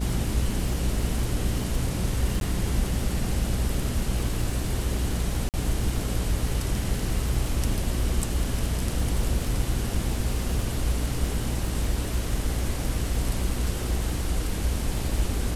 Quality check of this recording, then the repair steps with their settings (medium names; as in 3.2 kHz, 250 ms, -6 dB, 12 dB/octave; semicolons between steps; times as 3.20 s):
buzz 60 Hz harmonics 9 -30 dBFS
crackle 54 per s -30 dBFS
2.40–2.41 s: dropout 12 ms
5.49–5.54 s: dropout 48 ms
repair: de-click; de-hum 60 Hz, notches 9; interpolate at 2.40 s, 12 ms; interpolate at 5.49 s, 48 ms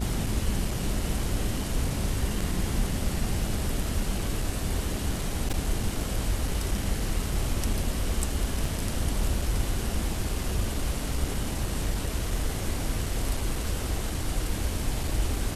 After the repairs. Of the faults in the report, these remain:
nothing left